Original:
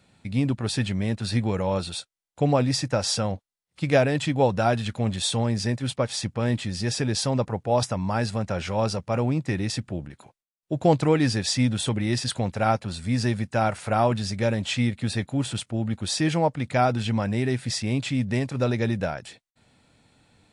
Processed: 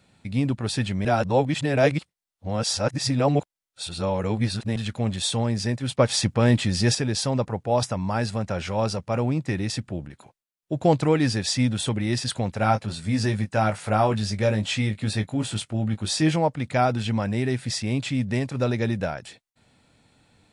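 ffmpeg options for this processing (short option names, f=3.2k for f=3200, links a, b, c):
-filter_complex "[0:a]asettb=1/sr,asplit=3[a][b][c];[a]atrim=end=5.984[d];[b]atrim=start=5.98:end=6.95,asetpts=PTS-STARTPTS,afade=t=in:d=0.004:c=qsin,afade=t=out:st=0.966:d=0.004:c=qsin,acontrast=54[e];[c]atrim=start=6.946[f];[d][e]acrossfade=d=0.004:c1=hsin:c2=qsin[g];[g][f]acrossfade=d=0.004:c1=qsin:c2=hsin,asettb=1/sr,asplit=3[h][i][j];[h]atrim=end=12.594[k];[i]atrim=start=12.59:end=16.36,asetpts=PTS-STARTPTS,afade=t=in:d=0.004:c=qsin,afade=t=out:st=3.766:d=0.004:c=qsin,asplit=2[l][m];[m]adelay=19,volume=-6.5dB[n];[l][n]amix=inputs=2:normalize=0,atrim=end_sample=166257[o];[j]atrim=start=16.356[p];[k][o]acrossfade=d=0.004:c1=hsin:c2=qsin[q];[q][p]acrossfade=d=0.004:c1=qsin:c2=hsin,asplit=3[r][s][t];[r]atrim=end=1.052[u];[s]atrim=start=1.048:end=4.762,asetpts=PTS-STARTPTS,areverse[v];[t]atrim=start=4.758[w];[u][v]acrossfade=d=0.004:c1=hsin:c2=hsin[x];[x][w]acrossfade=d=0.004:c1=hsin:c2=hsin"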